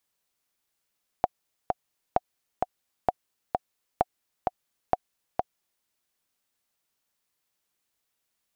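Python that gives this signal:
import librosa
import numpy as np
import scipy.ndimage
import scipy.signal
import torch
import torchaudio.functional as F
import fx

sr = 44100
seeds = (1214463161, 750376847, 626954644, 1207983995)

y = fx.click_track(sr, bpm=130, beats=2, bars=5, hz=732.0, accent_db=3.5, level_db=-7.5)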